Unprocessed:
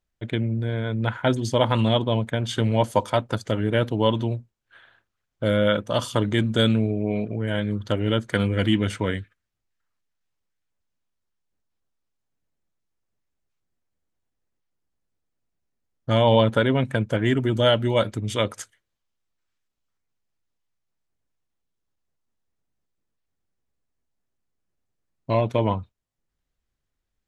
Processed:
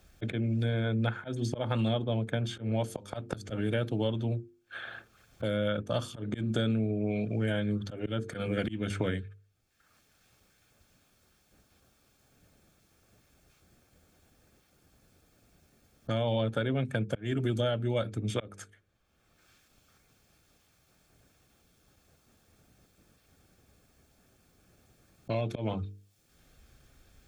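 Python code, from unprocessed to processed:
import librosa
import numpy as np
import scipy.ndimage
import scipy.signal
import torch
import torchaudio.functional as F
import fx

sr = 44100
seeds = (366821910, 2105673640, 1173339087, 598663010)

y = fx.low_shelf(x, sr, hz=110.0, db=9.5)
y = fx.hum_notches(y, sr, base_hz=50, count=9)
y = fx.auto_swell(y, sr, attack_ms=367.0)
y = fx.notch_comb(y, sr, f0_hz=970.0)
y = fx.band_squash(y, sr, depth_pct=100)
y = F.gain(torch.from_numpy(y), -7.0).numpy()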